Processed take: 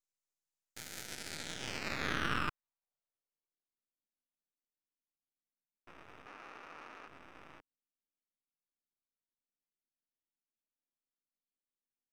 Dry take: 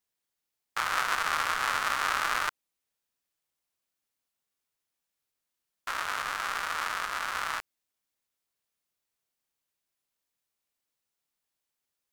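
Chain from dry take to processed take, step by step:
band-pass filter sweep 6,900 Hz → 250 Hz, 0:00.99–0:03.81
half-wave rectification
0:06.26–0:07.08: mid-hump overdrive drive 15 dB, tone 3,900 Hz, clips at −38 dBFS
level +1 dB

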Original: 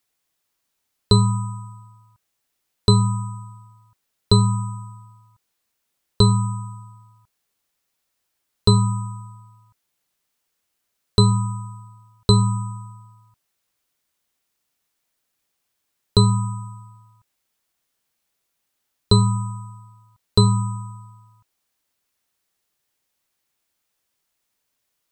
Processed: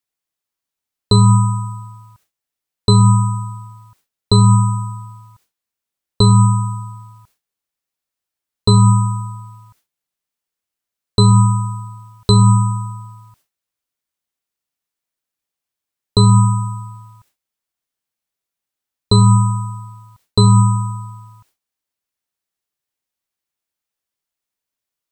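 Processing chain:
noise gate with hold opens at −51 dBFS
boost into a limiter +13 dB
level −1 dB

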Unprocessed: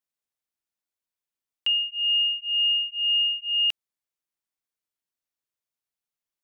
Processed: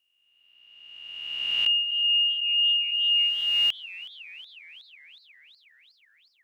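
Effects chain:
peak hold with a rise ahead of every peak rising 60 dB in 1.86 s
feedback echo with a swinging delay time 368 ms, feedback 65%, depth 125 cents, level −19.5 dB

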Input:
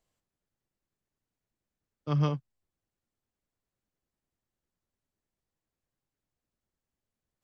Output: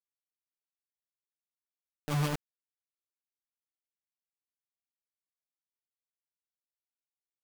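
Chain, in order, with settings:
rotating-speaker cabinet horn 8 Hz
bit reduction 5 bits
level −2.5 dB

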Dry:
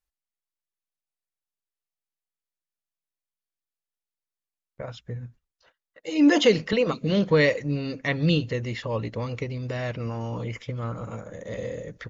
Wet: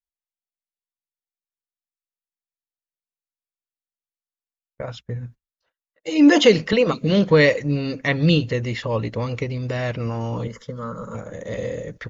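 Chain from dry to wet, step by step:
noise gate −44 dBFS, range −18 dB
0:10.47–0:11.15: phaser with its sweep stopped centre 490 Hz, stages 8
level +5 dB

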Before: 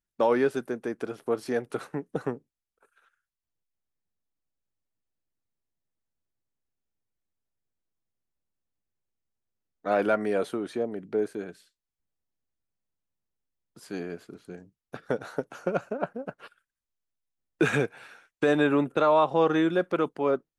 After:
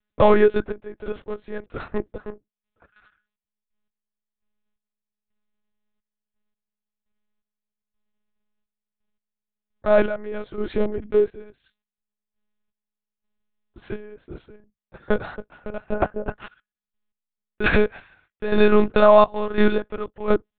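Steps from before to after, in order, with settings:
in parallel at −6.5 dB: comparator with hysteresis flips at −22.5 dBFS
on the sum: gate pattern "xxxx..x...xx..." 85 BPM −12 dB
one-pitch LPC vocoder at 8 kHz 210 Hz
level +8 dB

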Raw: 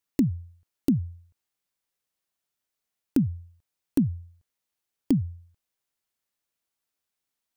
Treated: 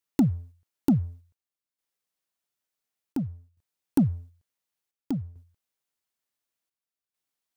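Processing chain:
low-shelf EQ 85 Hz −5 dB
leveller curve on the samples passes 1
square-wave tremolo 0.56 Hz, depth 60%, duty 75%

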